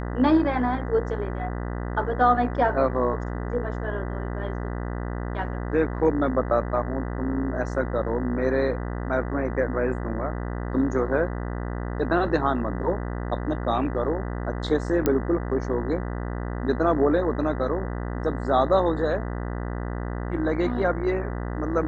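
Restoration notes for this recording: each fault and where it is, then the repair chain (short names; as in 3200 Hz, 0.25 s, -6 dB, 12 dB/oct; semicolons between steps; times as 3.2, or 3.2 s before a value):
buzz 60 Hz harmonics 33 -30 dBFS
15.06 pop -9 dBFS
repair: de-click; de-hum 60 Hz, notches 33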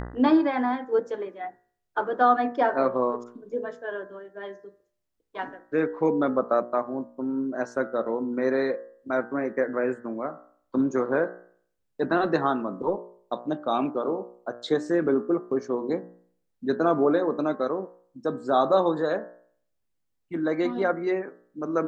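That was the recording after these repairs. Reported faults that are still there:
none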